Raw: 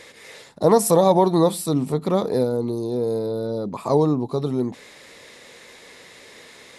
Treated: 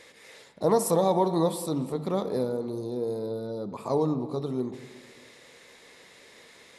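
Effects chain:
mains-hum notches 50/100/150 Hz
convolution reverb RT60 1.7 s, pre-delay 6 ms, DRR 10 dB
level −7.5 dB

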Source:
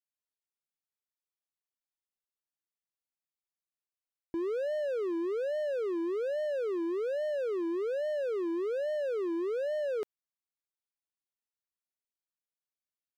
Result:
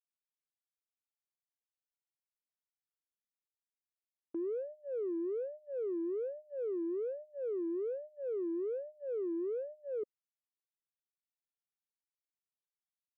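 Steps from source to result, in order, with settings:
Butterworth low-pass 530 Hz 72 dB per octave
noise gate −43 dBFS, range −15 dB
high-pass filter 140 Hz 6 dB per octave
in parallel at −11 dB: soft clipping −37.5 dBFS, distortion −12 dB
on the sum: level −4 dB

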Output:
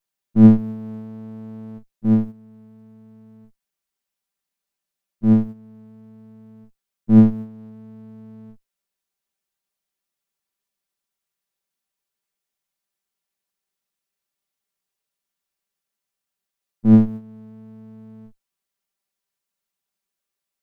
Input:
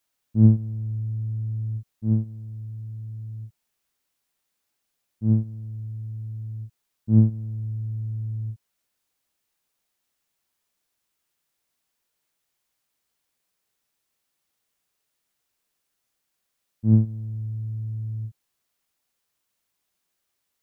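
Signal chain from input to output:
lower of the sound and its delayed copy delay 5.1 ms
noise gate −33 dBFS, range −11 dB
level +6 dB

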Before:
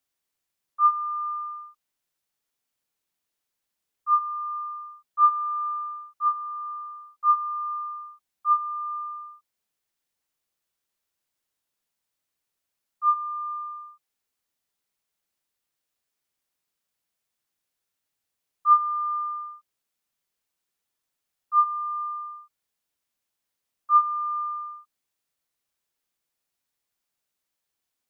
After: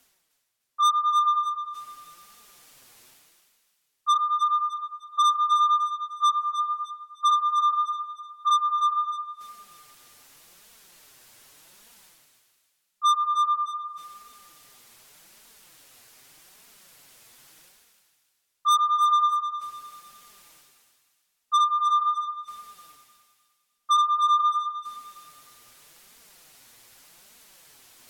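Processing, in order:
treble cut that deepens with the level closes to 1,100 Hz, closed at −20 dBFS
dynamic equaliser 1,200 Hz, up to +8 dB, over −36 dBFS, Q 6.5
reversed playback
upward compression, threshold −34 dBFS
reversed playback
flanger 0.84 Hz, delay 4.1 ms, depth 4.8 ms, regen +2%
soft clipping −22.5 dBFS, distortion −6 dB
on a send: feedback echo with a high-pass in the loop 304 ms, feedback 40%, high-pass 1,100 Hz, level −9 dB
on the sum: level +5.5 dB

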